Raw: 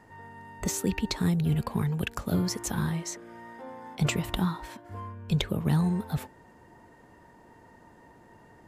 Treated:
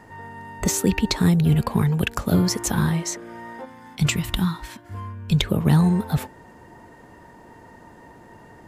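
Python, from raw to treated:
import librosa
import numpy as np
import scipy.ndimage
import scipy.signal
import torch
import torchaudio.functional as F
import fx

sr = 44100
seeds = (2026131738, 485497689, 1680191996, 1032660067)

y = fx.peak_eq(x, sr, hz=570.0, db=fx.line((3.64, -14.5), (5.45, -7.0)), octaves=2.0, at=(3.64, 5.45), fade=0.02)
y = F.gain(torch.from_numpy(y), 8.0).numpy()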